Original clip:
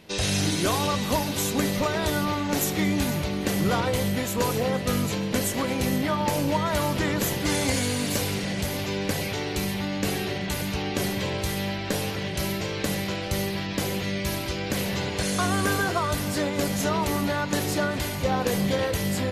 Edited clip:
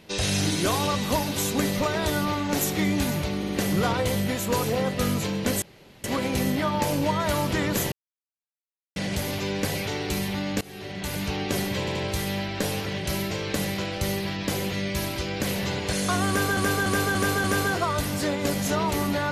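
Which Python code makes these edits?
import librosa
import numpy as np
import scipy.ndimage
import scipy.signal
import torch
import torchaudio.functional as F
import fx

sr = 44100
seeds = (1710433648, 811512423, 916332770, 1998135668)

y = fx.edit(x, sr, fx.stutter(start_s=3.37, slice_s=0.06, count=3),
    fx.insert_room_tone(at_s=5.5, length_s=0.42),
    fx.silence(start_s=7.38, length_s=1.04),
    fx.fade_in_from(start_s=10.07, length_s=0.62, floor_db=-23.5),
    fx.stutter(start_s=11.25, slice_s=0.08, count=3),
    fx.repeat(start_s=15.58, length_s=0.29, count=5), tone=tone)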